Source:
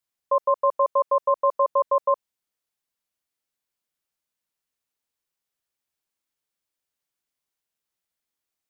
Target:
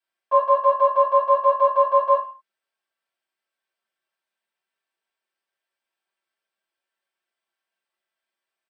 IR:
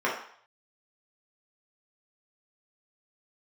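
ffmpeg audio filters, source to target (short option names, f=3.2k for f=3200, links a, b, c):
-filter_complex "[0:a]acrossover=split=550[a][b];[a]asoftclip=type=tanh:threshold=-39.5dB[c];[b]aecho=1:1:4.5:0.45[d];[c][d]amix=inputs=2:normalize=0[e];[1:a]atrim=start_sample=2205,asetrate=66150,aresample=44100[f];[e][f]afir=irnorm=-1:irlink=0,volume=-5dB"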